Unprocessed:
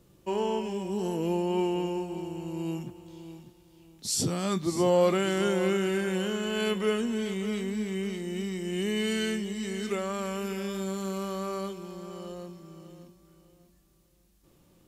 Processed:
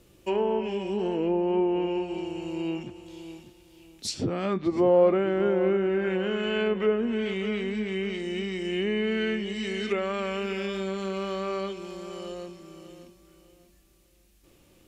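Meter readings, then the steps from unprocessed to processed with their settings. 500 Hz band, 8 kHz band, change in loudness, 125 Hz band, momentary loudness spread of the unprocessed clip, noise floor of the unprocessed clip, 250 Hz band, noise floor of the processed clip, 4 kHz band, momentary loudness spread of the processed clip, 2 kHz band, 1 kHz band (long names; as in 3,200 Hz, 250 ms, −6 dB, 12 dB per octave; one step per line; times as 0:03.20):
+3.5 dB, −9.0 dB, +2.0 dB, −1.5 dB, 15 LU, −62 dBFS, +1.5 dB, −60 dBFS, −0.5 dB, 14 LU, +2.5 dB, +1.0 dB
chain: treble cut that deepens with the level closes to 1,100 Hz, closed at −23.5 dBFS
graphic EQ with 15 bands 160 Hz −9 dB, 1,000 Hz −4 dB, 2,500 Hz +5 dB
level +4.5 dB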